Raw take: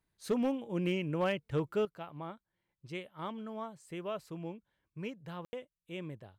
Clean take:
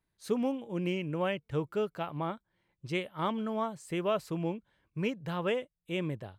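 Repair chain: clip repair -24 dBFS; room tone fill 5.45–5.53; gain 0 dB, from 1.85 s +8.5 dB

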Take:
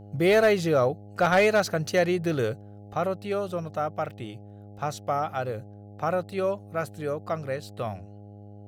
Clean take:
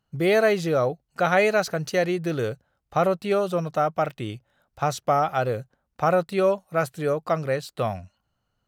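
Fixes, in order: clip repair -13.5 dBFS; de-hum 102.4 Hz, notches 8; gain 0 dB, from 2.94 s +6 dB

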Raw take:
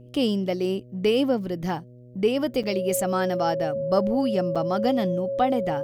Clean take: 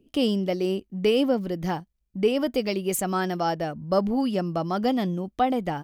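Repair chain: de-hum 123 Hz, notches 5; notch 550 Hz, Q 30; interpolate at 2.63/4.55, 6.3 ms

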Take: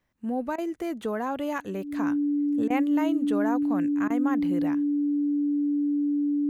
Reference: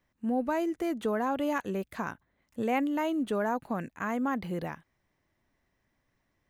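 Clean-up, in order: notch 290 Hz, Q 30; interpolate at 0.56/2.68/4.08, 21 ms

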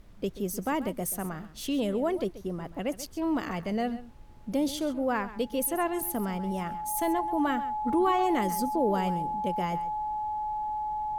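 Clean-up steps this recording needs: notch 850 Hz, Q 30; interpolate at 5.65, 1.5 ms; noise print and reduce 30 dB; inverse comb 0.133 s -15 dB

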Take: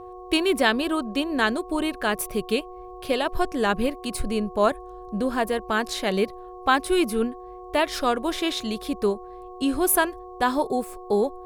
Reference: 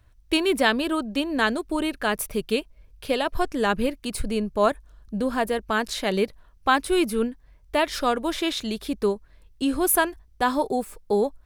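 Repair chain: de-hum 365.6 Hz, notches 3; notch 480 Hz, Q 30

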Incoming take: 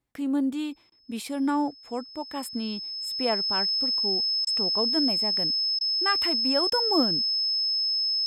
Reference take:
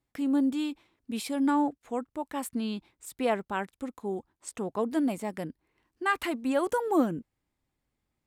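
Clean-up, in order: notch 5200 Hz, Q 30; interpolate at 0.9/4.45/5.79/6.7, 18 ms

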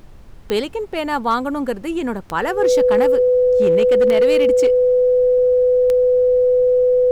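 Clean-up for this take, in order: clip repair -9 dBFS; de-click; notch 500 Hz, Q 30; noise print and reduce 28 dB

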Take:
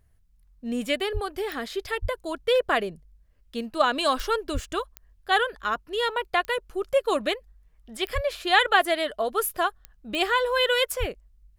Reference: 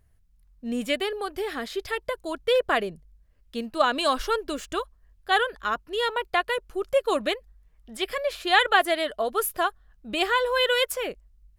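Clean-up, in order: de-click; de-plosive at 1.13/2.01/4.53/8.14/10.99

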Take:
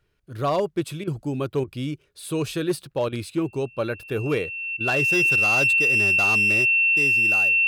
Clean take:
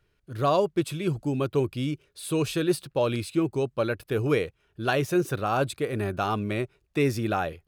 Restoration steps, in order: clip repair -16 dBFS; notch 2700 Hz, Q 30; interpolate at 1.04/1.64/3.09/4.77, 33 ms; gain correction +7 dB, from 6.91

